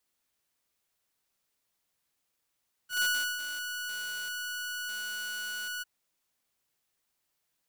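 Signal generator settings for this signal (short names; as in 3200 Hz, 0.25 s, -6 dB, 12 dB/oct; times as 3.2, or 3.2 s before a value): ADSR saw 1470 Hz, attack 0.122 s, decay 0.366 s, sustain -10 dB, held 2.93 s, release 20 ms -22 dBFS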